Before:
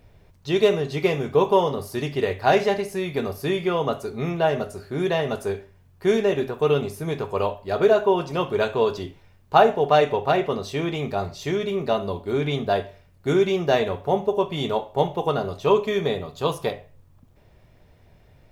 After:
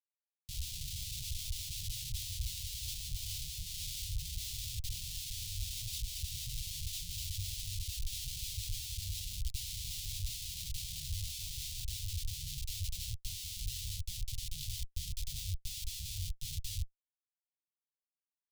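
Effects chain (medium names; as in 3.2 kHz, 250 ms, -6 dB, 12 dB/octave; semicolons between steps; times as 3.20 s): ever faster or slower copies 85 ms, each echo +3 st, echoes 3; reverse; compression 16:1, threshold -31 dBFS, peak gain reduction 22.5 dB; reverse; Schmitt trigger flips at -39 dBFS; inverse Chebyshev band-stop 220–1500 Hz, stop band 50 dB; trim +5 dB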